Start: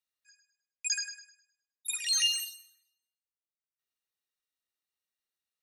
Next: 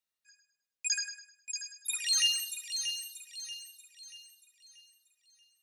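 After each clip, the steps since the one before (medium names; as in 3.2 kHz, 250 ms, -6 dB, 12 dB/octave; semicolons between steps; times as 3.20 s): feedback echo behind a high-pass 634 ms, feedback 41%, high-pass 2.5 kHz, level -6.5 dB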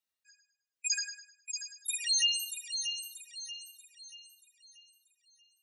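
spectral gate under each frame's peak -15 dB strong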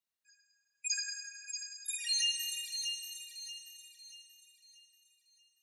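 plate-style reverb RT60 3 s, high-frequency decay 0.7×, DRR 2.5 dB; trim -4 dB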